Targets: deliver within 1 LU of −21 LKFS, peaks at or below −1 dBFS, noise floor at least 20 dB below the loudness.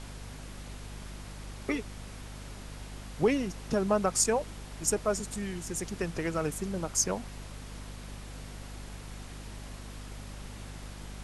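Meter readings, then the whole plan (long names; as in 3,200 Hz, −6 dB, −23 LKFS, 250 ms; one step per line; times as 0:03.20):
mains hum 50 Hz; hum harmonics up to 250 Hz; level of the hum −42 dBFS; background noise floor −45 dBFS; target noise floor −51 dBFS; integrated loudness −31.0 LKFS; sample peak −12.5 dBFS; target loudness −21.0 LKFS
→ hum removal 50 Hz, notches 5
noise reduction from a noise print 6 dB
level +10 dB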